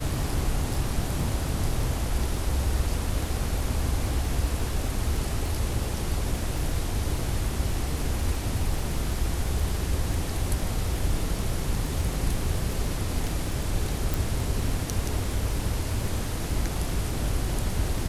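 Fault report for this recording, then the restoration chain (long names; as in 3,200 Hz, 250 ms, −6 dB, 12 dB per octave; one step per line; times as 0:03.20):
surface crackle 27 per second −31 dBFS
0:14.14: click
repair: click removal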